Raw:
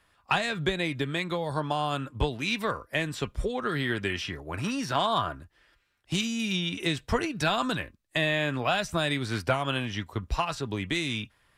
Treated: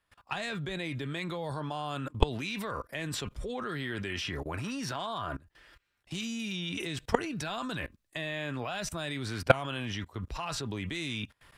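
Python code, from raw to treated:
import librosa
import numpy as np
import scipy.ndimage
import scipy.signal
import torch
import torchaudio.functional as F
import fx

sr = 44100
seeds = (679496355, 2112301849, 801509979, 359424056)

y = fx.level_steps(x, sr, step_db=22)
y = F.gain(torch.from_numpy(y), 8.5).numpy()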